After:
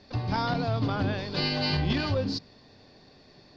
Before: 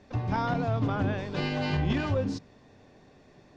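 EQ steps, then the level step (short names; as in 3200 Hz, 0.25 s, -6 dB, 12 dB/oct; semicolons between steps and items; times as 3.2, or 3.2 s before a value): synth low-pass 4600 Hz, resonance Q 6.6; 0.0 dB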